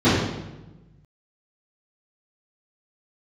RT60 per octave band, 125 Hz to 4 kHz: 1.8 s, 1.4 s, 1.1 s, 1.0 s, 0.90 s, 0.80 s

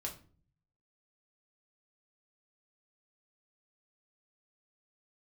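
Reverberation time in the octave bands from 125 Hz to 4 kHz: 1.0 s, 0.70 s, 0.50 s, 0.40 s, 0.35 s, 0.30 s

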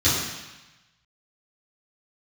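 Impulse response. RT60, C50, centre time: 1.0 s, 0.5 dB, 76 ms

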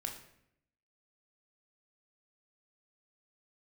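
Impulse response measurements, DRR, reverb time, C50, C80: 2.0 dB, 0.75 s, 7.5 dB, 10.5 dB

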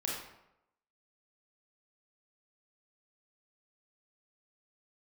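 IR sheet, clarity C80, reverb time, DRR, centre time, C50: 4.5 dB, 0.85 s, -4.0 dB, 57 ms, 0.5 dB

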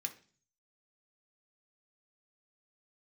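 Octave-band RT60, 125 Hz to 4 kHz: 0.80 s, 0.55 s, 0.45 s, 0.40 s, 0.40 s, 0.50 s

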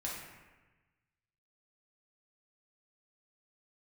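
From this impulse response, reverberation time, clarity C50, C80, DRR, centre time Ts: 1.2 s, 1.0 dB, 4.0 dB, -5.0 dB, 69 ms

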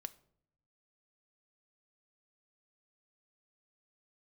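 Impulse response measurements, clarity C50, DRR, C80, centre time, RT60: 19.5 dB, 11.5 dB, 23.0 dB, 3 ms, no single decay rate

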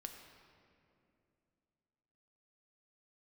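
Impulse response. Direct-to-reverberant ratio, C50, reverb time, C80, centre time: 4.0 dB, 5.5 dB, 2.6 s, 6.5 dB, 47 ms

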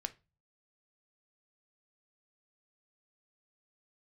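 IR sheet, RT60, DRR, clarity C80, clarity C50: 0.30 s, 9.0 dB, 27.5 dB, 19.0 dB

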